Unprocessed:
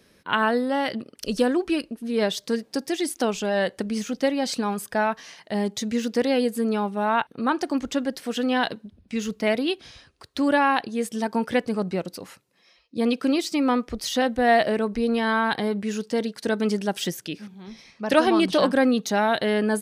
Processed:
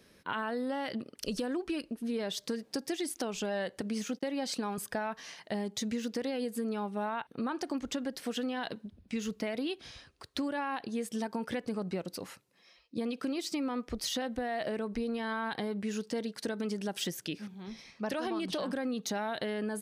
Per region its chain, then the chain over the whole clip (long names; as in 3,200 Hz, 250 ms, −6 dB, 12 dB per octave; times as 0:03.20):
0:03.81–0:04.78: noise gate −39 dBFS, range −32 dB + high-pass filter 160 Hz
whole clip: brickwall limiter −16 dBFS; downward compressor, threshold −28 dBFS; level −3 dB